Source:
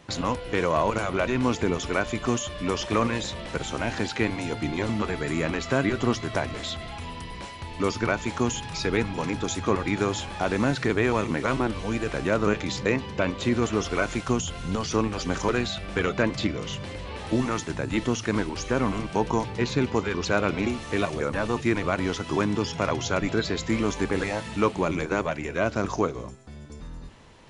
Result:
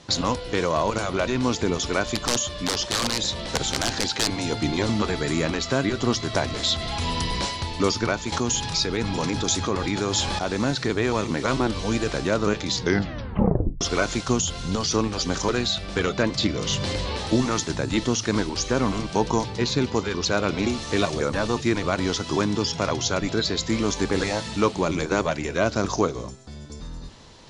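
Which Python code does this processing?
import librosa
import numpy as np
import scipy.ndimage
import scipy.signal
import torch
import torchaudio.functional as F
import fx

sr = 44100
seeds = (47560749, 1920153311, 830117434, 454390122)

y = fx.overflow_wrap(x, sr, gain_db=18.0, at=(2.15, 4.4))
y = fx.env_flatten(y, sr, amount_pct=70, at=(8.32, 10.39))
y = fx.edit(y, sr, fx.tape_stop(start_s=12.74, length_s=1.07), tone=tone)
y = scipy.signal.sosfilt(scipy.signal.butter(2, 6900.0, 'lowpass', fs=sr, output='sos'), y)
y = fx.high_shelf_res(y, sr, hz=3300.0, db=7.0, q=1.5)
y = fx.rider(y, sr, range_db=10, speed_s=0.5)
y = y * 10.0 ** (1.0 / 20.0)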